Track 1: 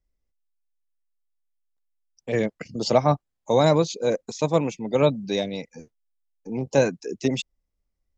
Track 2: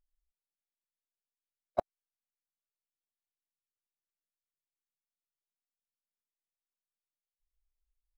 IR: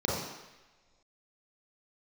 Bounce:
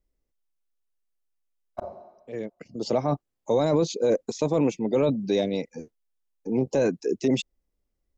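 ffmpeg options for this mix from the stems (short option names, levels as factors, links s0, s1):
-filter_complex "[0:a]equalizer=f=360:w=0.78:g=8,volume=0.841[s0];[1:a]volume=0.75,asplit=3[s1][s2][s3];[s2]volume=0.188[s4];[s3]apad=whole_len=360453[s5];[s0][s5]sidechaincompress=threshold=0.00316:ratio=6:attack=8.6:release=887[s6];[2:a]atrim=start_sample=2205[s7];[s4][s7]afir=irnorm=-1:irlink=0[s8];[s6][s1][s8]amix=inputs=3:normalize=0,alimiter=limit=0.2:level=0:latency=1:release=12"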